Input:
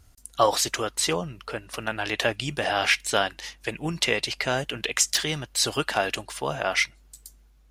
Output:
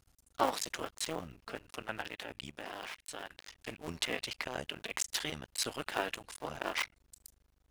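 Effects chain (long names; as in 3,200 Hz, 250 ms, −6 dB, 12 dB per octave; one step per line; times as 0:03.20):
sub-harmonics by changed cycles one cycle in 2, muted
dynamic equaliser 5,500 Hz, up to −4 dB, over −42 dBFS, Q 1.4
0:02.02–0:03.30: output level in coarse steps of 18 dB
low-shelf EQ 180 Hz −4.5 dB
level −7.5 dB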